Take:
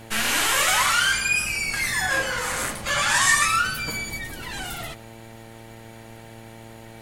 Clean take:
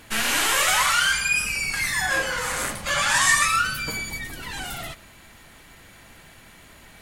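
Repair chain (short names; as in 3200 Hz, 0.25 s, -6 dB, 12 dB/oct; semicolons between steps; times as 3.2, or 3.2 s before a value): de-hum 113.3 Hz, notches 8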